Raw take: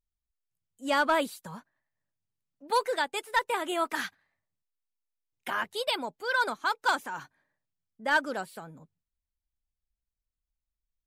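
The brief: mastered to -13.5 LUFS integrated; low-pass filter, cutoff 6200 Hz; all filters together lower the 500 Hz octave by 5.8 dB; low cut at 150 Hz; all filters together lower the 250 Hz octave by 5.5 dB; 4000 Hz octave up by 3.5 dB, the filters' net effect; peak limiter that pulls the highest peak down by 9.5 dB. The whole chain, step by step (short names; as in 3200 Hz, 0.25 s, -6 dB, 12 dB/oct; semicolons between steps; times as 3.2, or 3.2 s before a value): HPF 150 Hz; LPF 6200 Hz; bell 250 Hz -4 dB; bell 500 Hz -6.5 dB; bell 4000 Hz +5 dB; gain +21.5 dB; limiter -1.5 dBFS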